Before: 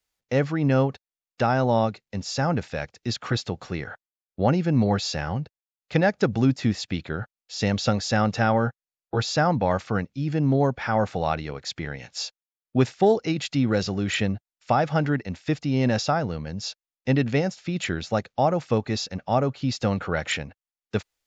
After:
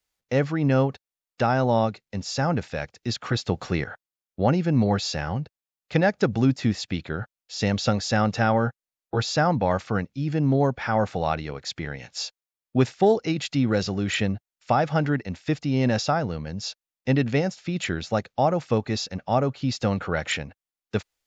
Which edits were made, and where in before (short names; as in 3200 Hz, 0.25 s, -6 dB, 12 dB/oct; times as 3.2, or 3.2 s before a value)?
3.49–3.84 gain +5 dB